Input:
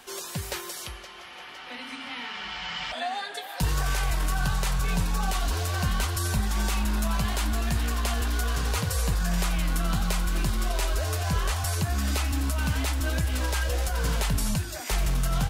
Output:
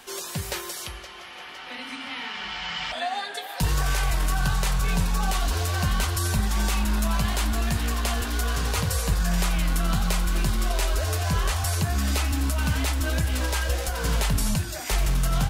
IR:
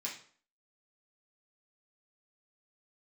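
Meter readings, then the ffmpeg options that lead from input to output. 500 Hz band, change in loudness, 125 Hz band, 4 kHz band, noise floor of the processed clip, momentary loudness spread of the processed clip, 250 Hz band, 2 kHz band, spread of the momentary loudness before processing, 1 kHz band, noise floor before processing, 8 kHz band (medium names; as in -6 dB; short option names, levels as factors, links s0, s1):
+2.0 dB, +2.0 dB, +2.0 dB, +2.5 dB, -39 dBFS, 7 LU, +2.0 dB, +2.0 dB, 8 LU, +2.0 dB, -42 dBFS, +2.5 dB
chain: -af "bandreject=f=61.01:t=h:w=4,bandreject=f=122.02:t=h:w=4,bandreject=f=183.03:t=h:w=4,bandreject=f=244.04:t=h:w=4,bandreject=f=305.05:t=h:w=4,bandreject=f=366.06:t=h:w=4,bandreject=f=427.07:t=h:w=4,bandreject=f=488.08:t=h:w=4,bandreject=f=549.09:t=h:w=4,bandreject=f=610.1:t=h:w=4,bandreject=f=671.11:t=h:w=4,bandreject=f=732.12:t=h:w=4,bandreject=f=793.13:t=h:w=4,bandreject=f=854.14:t=h:w=4,bandreject=f=915.15:t=h:w=4,bandreject=f=976.16:t=h:w=4,bandreject=f=1037.17:t=h:w=4,bandreject=f=1098.18:t=h:w=4,bandreject=f=1159.19:t=h:w=4,bandreject=f=1220.2:t=h:w=4,bandreject=f=1281.21:t=h:w=4,bandreject=f=1342.22:t=h:w=4,bandreject=f=1403.23:t=h:w=4,bandreject=f=1464.24:t=h:w=4,bandreject=f=1525.25:t=h:w=4,bandreject=f=1586.26:t=h:w=4,bandreject=f=1647.27:t=h:w=4,volume=1.33"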